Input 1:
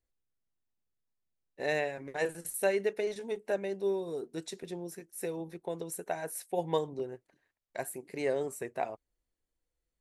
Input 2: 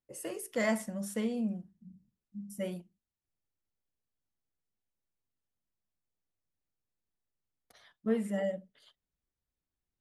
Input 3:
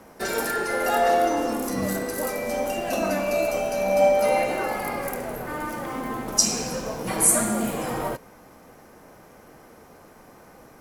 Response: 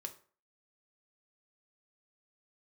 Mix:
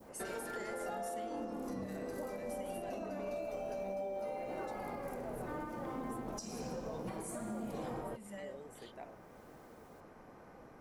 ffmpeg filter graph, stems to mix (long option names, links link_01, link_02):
-filter_complex "[0:a]adelay=200,volume=-15.5dB[link_01];[1:a]tiltshelf=frequency=970:gain=-6,acompressor=mode=upward:threshold=-46dB:ratio=2.5,volume=-6dB[link_02];[2:a]lowpass=frequency=1900:poles=1,acompressor=threshold=-28dB:ratio=6,volume=-6dB[link_03];[link_01][link_02]amix=inputs=2:normalize=0,acompressor=threshold=-42dB:ratio=6,volume=0dB[link_04];[link_03][link_04]amix=inputs=2:normalize=0,adynamicequalizer=threshold=0.00224:dfrequency=1900:dqfactor=0.79:tfrequency=1900:tqfactor=0.79:attack=5:release=100:ratio=0.375:range=2.5:mode=cutabove:tftype=bell,alimiter=level_in=8dB:limit=-24dB:level=0:latency=1:release=377,volume=-8dB"